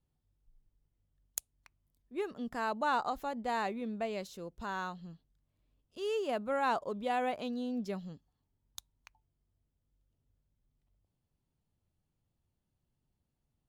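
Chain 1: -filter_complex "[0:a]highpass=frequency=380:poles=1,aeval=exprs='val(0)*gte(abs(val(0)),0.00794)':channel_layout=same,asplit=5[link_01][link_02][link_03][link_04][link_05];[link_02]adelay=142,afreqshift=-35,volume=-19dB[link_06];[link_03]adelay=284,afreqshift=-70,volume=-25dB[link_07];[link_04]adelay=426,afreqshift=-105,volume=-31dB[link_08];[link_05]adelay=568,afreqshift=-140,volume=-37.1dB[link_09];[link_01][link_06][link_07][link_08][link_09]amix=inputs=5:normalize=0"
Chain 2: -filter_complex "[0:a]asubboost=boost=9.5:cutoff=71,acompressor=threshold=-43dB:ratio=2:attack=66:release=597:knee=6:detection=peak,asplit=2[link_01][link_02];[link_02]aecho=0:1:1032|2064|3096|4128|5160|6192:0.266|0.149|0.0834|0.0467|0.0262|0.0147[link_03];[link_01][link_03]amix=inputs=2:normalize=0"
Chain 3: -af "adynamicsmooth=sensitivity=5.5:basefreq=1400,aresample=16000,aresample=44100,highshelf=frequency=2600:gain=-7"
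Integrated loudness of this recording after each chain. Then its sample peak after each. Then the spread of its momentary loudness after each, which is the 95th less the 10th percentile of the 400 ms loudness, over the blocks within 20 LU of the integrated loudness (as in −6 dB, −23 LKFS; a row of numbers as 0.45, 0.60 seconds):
−37.5, −43.0, −37.0 LKFS; −15.0, −15.0, −22.0 dBFS; 15, 19, 19 LU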